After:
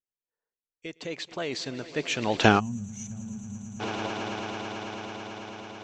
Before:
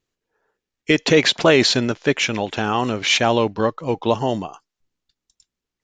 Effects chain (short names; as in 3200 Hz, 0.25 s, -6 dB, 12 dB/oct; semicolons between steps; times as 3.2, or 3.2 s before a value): Doppler pass-by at 2.46, 18 m/s, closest 1.2 m; swelling echo 0.11 s, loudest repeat 8, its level -16.5 dB; spectral gain 2.59–3.8, 240–5800 Hz -28 dB; gain +5.5 dB